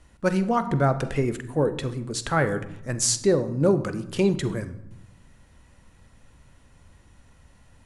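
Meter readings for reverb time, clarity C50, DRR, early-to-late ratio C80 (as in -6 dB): 0.85 s, 14.0 dB, 10.5 dB, 16.0 dB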